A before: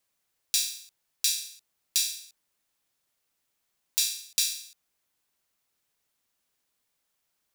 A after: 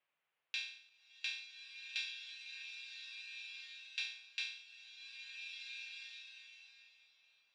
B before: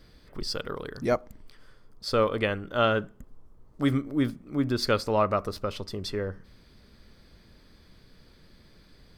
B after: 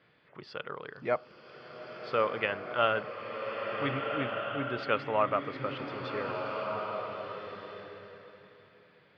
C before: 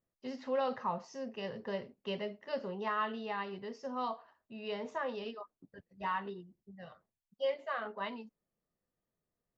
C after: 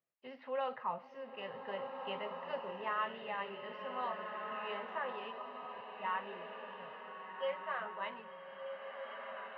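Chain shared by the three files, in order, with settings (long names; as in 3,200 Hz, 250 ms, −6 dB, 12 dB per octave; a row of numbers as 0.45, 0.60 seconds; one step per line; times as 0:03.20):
elliptic band-pass filter 140–2,800 Hz, stop band 70 dB
parametric band 230 Hz −12 dB 2 octaves
slow-attack reverb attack 1,660 ms, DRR 3 dB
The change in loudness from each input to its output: −17.0, −4.5, −3.0 LU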